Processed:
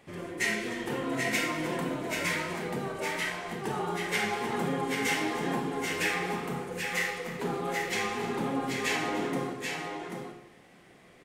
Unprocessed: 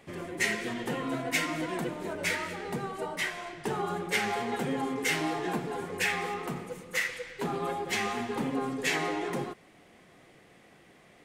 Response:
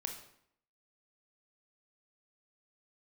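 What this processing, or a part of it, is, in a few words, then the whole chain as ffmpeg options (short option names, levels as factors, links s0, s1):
bathroom: -filter_complex "[0:a]aecho=1:1:301|768|786:0.15|0.211|0.562[s0];[1:a]atrim=start_sample=2205[s1];[s0][s1]afir=irnorm=-1:irlink=0"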